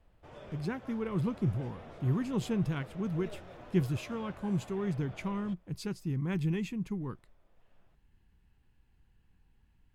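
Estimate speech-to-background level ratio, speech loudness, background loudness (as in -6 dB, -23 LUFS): 15.5 dB, -34.5 LUFS, -50.0 LUFS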